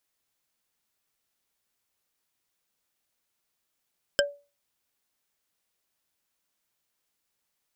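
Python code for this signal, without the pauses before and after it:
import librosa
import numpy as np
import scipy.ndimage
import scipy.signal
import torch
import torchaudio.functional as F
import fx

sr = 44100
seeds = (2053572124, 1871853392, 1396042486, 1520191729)

y = fx.strike_wood(sr, length_s=0.45, level_db=-17.5, body='bar', hz=573.0, decay_s=0.31, tilt_db=0, modes=5)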